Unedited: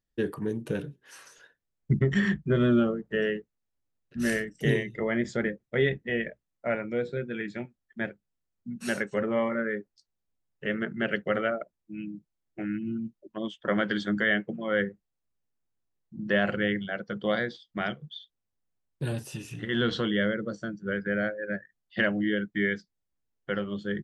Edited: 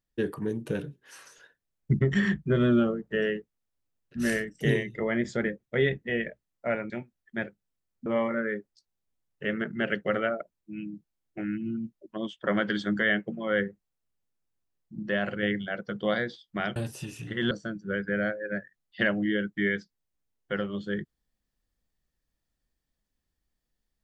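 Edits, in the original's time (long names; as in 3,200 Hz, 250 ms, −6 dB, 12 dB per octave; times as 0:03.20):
0:06.90–0:07.53: remove
0:08.69–0:09.27: remove
0:16.24–0:16.64: clip gain −3.5 dB
0:17.97–0:19.08: remove
0:19.83–0:20.49: remove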